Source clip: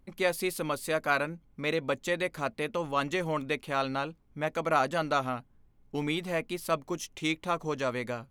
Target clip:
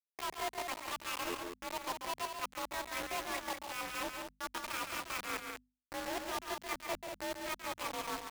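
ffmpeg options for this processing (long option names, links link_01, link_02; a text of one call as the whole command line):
ffmpeg -i in.wav -filter_complex "[0:a]asetrate=78577,aresample=44100,atempo=0.561231,acrossover=split=4700[link_01][link_02];[link_02]acompressor=threshold=-47dB:ratio=4:attack=1:release=60[link_03];[link_01][link_03]amix=inputs=2:normalize=0,afwtdn=0.02,lowshelf=frequency=390:gain=-2.5,areverse,acompressor=threshold=-42dB:ratio=16,areverse,afreqshift=48,acrusher=bits=6:mix=0:aa=0.000001,bandreject=frequency=50:width_type=h:width=6,bandreject=frequency=100:width_type=h:width=6,bandreject=frequency=150:width_type=h:width=6,bandreject=frequency=200:width_type=h:width=6,bandreject=frequency=250:width_type=h:width=6,aecho=1:1:137|192.4:0.447|0.501,volume=4dB" out.wav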